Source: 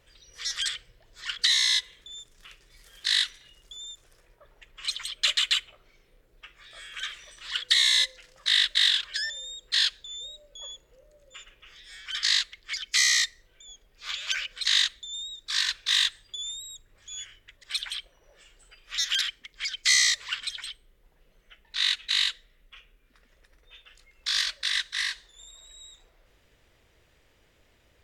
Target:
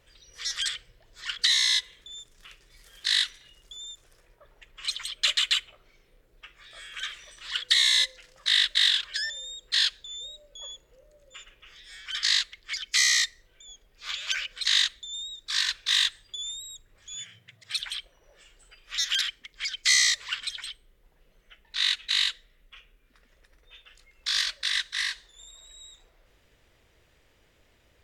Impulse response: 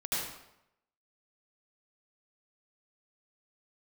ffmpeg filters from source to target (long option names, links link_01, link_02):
-filter_complex "[0:a]asettb=1/sr,asplit=3[link_01][link_02][link_03];[link_01]atrim=end=17.144[link_04];[link_02]atrim=start=17.14:end=17.8,asetpts=PTS-STARTPTS,afade=type=in:duration=0.004:curve=qsin,afade=type=out:start_time=0.656:duration=0.004:curve=qsin,afreqshift=81[link_05];[link_03]atrim=start=17.796[link_06];[link_04][link_05]acrossfade=duration=0.004:curve1=hsin:curve2=qsin[link_07];[link_07][link_06]acrossfade=duration=0.004:curve1=qsin:curve2=hsin"